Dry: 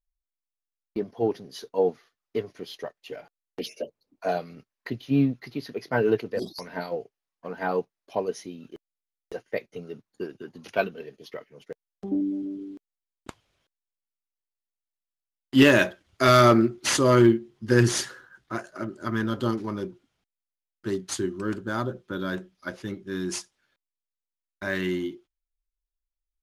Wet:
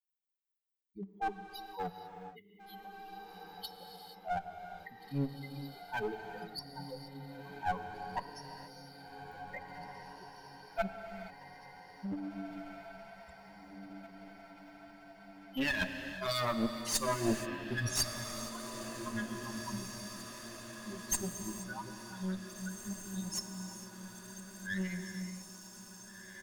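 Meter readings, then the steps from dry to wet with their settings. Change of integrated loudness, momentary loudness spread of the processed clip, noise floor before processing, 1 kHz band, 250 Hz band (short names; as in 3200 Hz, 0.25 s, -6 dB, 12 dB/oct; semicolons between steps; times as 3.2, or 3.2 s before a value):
-14.0 dB, 18 LU, under -85 dBFS, -9.5 dB, -14.0 dB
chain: per-bin expansion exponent 3; tilt +1.5 dB/oct; comb 1.1 ms, depth 90%; reverse; compressor 6:1, threshold -35 dBFS, peak gain reduction 19 dB; reverse; harmonic tremolo 4.8 Hz, depth 70%, crossover 1600 Hz; one-sided clip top -45.5 dBFS; diffused feedback echo 1.868 s, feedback 51%, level -9.5 dB; non-linear reverb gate 0.5 s flat, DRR 7 dB; mismatched tape noise reduction encoder only; gain +9 dB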